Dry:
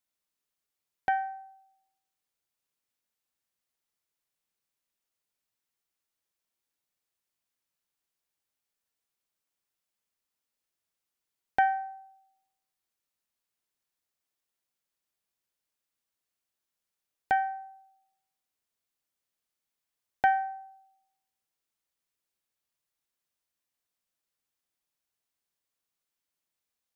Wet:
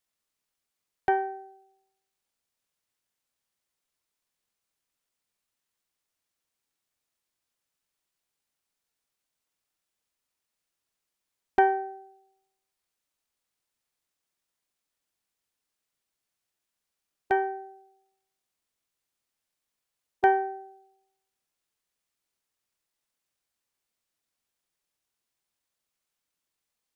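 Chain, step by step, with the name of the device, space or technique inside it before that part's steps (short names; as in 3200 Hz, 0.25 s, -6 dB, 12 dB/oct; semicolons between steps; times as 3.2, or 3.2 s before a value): octave pedal (harmoniser -12 st -2 dB)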